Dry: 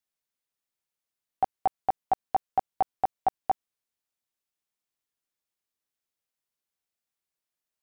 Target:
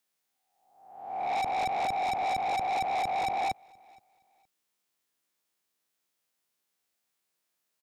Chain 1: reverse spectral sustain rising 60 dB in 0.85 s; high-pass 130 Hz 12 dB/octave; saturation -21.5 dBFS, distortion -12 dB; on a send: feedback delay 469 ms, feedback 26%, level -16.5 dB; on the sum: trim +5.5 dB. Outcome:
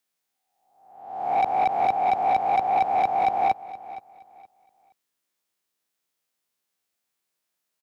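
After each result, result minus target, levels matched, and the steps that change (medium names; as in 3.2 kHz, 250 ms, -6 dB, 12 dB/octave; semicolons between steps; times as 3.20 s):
echo-to-direct +10.5 dB; saturation: distortion -8 dB
change: feedback delay 469 ms, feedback 26%, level -27 dB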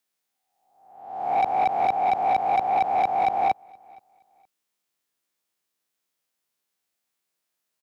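saturation: distortion -8 dB
change: saturation -33 dBFS, distortion -4 dB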